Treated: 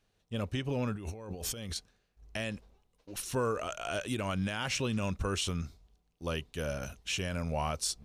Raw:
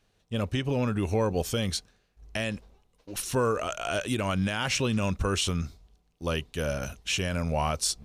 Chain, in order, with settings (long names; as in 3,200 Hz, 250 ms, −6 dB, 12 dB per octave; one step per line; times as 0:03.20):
0:00.95–0:01.76: compressor whose output falls as the input rises −35 dBFS, ratio −1
level −5.5 dB